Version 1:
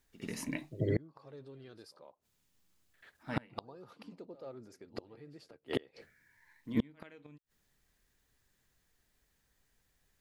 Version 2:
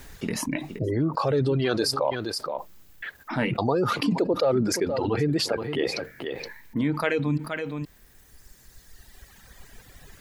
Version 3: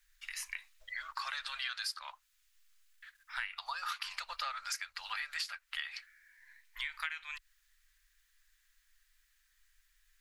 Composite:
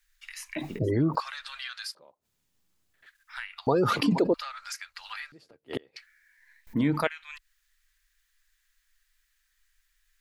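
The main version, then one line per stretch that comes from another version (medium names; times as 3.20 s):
3
0.56–1.20 s: from 2
1.95–3.06 s: from 1
3.67–4.34 s: from 2
5.32–5.96 s: from 1
6.67–7.07 s: from 2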